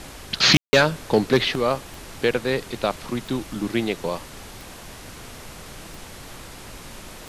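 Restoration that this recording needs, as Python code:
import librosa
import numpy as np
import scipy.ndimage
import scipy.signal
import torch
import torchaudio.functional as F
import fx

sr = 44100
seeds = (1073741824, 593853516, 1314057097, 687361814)

y = fx.fix_declick_ar(x, sr, threshold=10.0)
y = fx.fix_ambience(y, sr, seeds[0], print_start_s=4.58, print_end_s=5.08, start_s=0.57, end_s=0.73)
y = fx.noise_reduce(y, sr, print_start_s=4.58, print_end_s=5.08, reduce_db=26.0)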